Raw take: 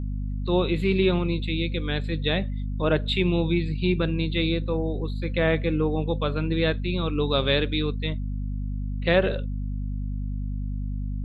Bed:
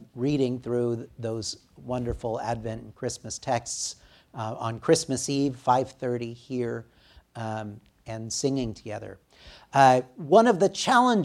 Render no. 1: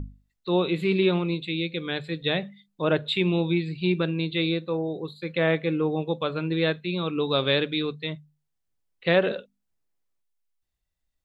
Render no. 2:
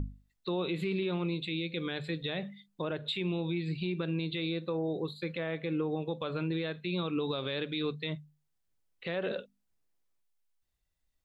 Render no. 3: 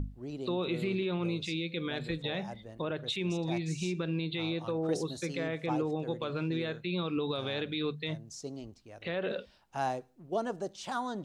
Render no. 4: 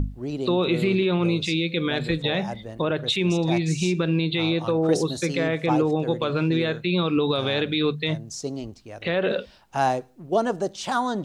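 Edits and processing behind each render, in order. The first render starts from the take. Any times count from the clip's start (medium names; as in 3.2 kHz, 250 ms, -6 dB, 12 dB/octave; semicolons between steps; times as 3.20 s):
hum notches 50/100/150/200/250 Hz
compression 10:1, threshold -26 dBFS, peak gain reduction 11 dB; peak limiter -24 dBFS, peak gain reduction 10 dB
add bed -15.5 dB
trim +10.5 dB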